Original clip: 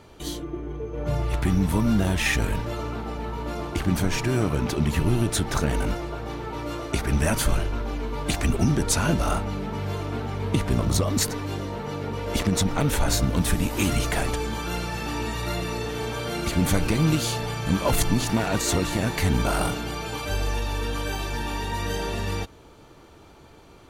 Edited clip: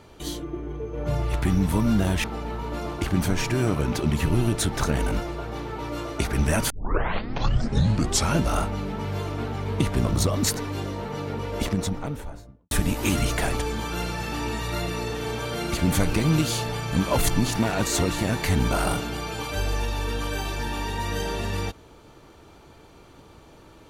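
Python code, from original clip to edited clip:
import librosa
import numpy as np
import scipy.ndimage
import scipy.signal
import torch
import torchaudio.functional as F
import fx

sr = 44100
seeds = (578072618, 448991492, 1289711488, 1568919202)

y = fx.studio_fade_out(x, sr, start_s=12.05, length_s=1.4)
y = fx.edit(y, sr, fx.cut(start_s=2.24, length_s=0.74),
    fx.tape_start(start_s=7.44, length_s=1.68), tone=tone)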